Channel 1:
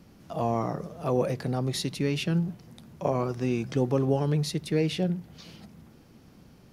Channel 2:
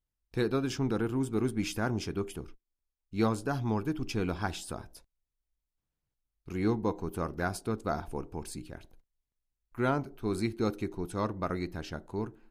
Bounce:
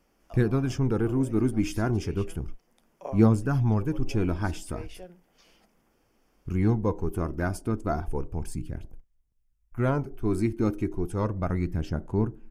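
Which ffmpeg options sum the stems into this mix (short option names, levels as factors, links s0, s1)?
-filter_complex "[0:a]highpass=410,volume=0.398[s0];[1:a]lowshelf=f=250:g=11.5,aphaser=in_gain=1:out_gain=1:delay=3.3:decay=0.36:speed=0.33:type=sinusoidal,volume=0.944,asplit=2[s1][s2];[s2]apad=whole_len=296701[s3];[s0][s3]sidechaincompress=threshold=0.0316:ratio=8:attack=16:release=1100[s4];[s4][s1]amix=inputs=2:normalize=0,equalizer=f=4000:t=o:w=0.25:g=-14"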